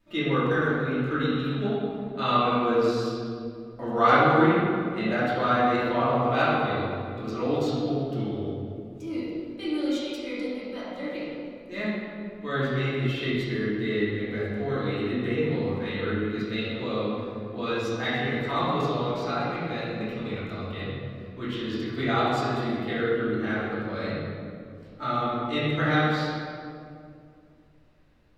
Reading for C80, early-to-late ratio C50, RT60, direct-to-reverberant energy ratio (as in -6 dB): -0.5 dB, -3.0 dB, 2.5 s, -11.5 dB